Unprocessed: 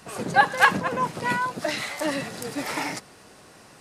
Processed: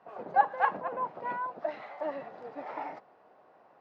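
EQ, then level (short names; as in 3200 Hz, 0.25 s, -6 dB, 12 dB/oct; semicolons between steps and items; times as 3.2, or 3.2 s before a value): band-pass 730 Hz, Q 1.9; air absorption 200 m; -2.5 dB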